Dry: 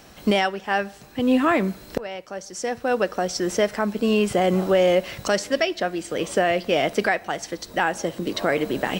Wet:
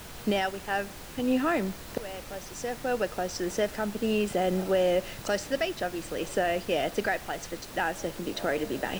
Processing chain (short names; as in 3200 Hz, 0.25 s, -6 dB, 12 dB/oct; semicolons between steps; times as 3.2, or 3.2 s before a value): notch comb 1100 Hz; added noise pink -37 dBFS; gain -6.5 dB